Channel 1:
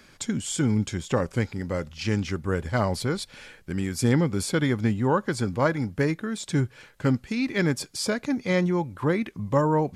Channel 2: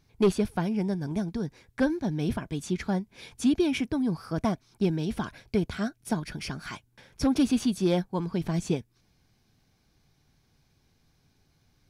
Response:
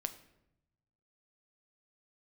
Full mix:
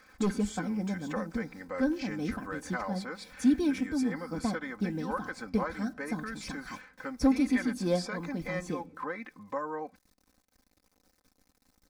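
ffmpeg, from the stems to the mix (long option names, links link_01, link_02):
-filter_complex "[0:a]acompressor=threshold=-28dB:ratio=2.5,bandpass=frequency=1500:width_type=q:width=0.8:csg=0,volume=-1.5dB,asplit=2[link_01][link_02];[1:a]highshelf=frequency=8600:gain=-3,acrusher=bits=9:mix=0:aa=0.000001,volume=-6.5dB,asplit=2[link_03][link_04];[link_04]volume=-7dB[link_05];[link_02]apad=whole_len=524580[link_06];[link_03][link_06]sidechaincompress=threshold=-49dB:ratio=8:attack=39:release=126[link_07];[2:a]atrim=start_sample=2205[link_08];[link_05][link_08]afir=irnorm=-1:irlink=0[link_09];[link_01][link_07][link_09]amix=inputs=3:normalize=0,equalizer=frequency=3000:width_type=o:width=0.6:gain=-9.5,aecho=1:1:3.9:0.77"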